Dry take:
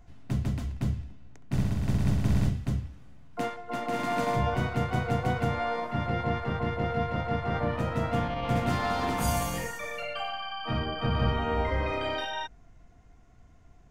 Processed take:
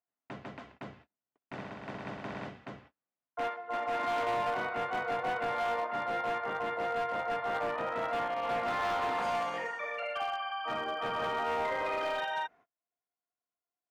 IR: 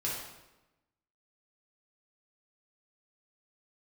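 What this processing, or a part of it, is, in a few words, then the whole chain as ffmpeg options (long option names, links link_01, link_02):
walkie-talkie: -af "highpass=540,lowpass=2200,asoftclip=type=hard:threshold=-30dB,agate=range=-33dB:threshold=-58dB:ratio=16:detection=peak,volume=2dB"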